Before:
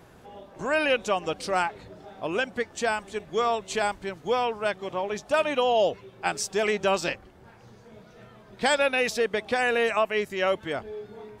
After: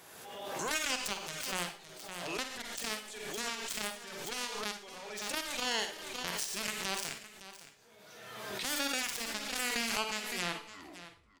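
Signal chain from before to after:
turntable brake at the end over 1.02 s
spectral tilt +4 dB per octave
brickwall limiter −14.5 dBFS, peak gain reduction 9.5 dB
harmonic generator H 3 −7 dB, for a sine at −14.5 dBFS
single-tap delay 562 ms −14.5 dB
convolution reverb RT60 0.35 s, pre-delay 39 ms, DRR 6 dB
background raised ahead of every attack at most 33 dB per second
level −6.5 dB

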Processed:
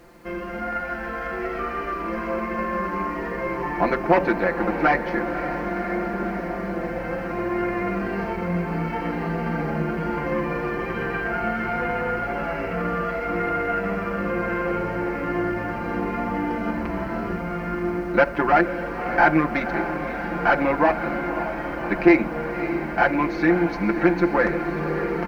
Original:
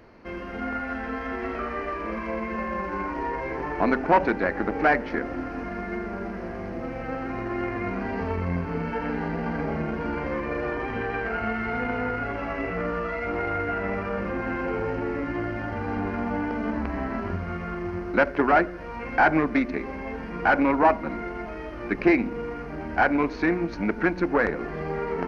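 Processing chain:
comb filter 5.8 ms, depth 82%
bit reduction 10 bits
feedback delay with all-pass diffusion 567 ms, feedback 75%, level −10.5 dB

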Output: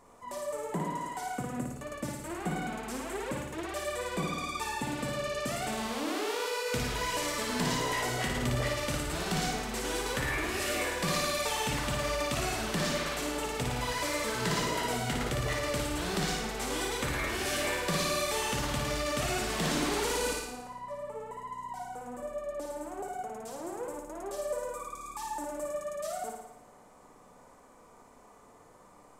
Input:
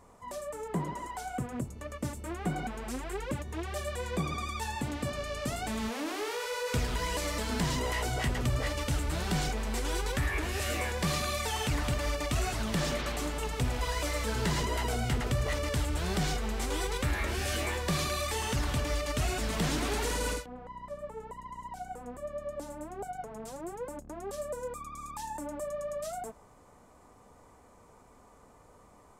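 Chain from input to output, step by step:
parametric band 64 Hz −12.5 dB 1.7 octaves
on a send: flutter between parallel walls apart 9.8 metres, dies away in 0.88 s

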